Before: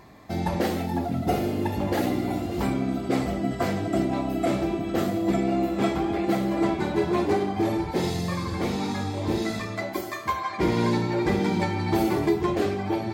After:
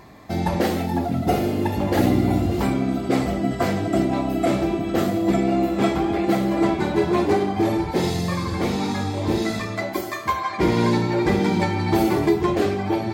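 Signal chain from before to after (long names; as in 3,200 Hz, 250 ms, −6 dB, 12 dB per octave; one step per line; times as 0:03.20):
0:01.96–0:02.56: low-shelf EQ 170 Hz +11 dB
level +4 dB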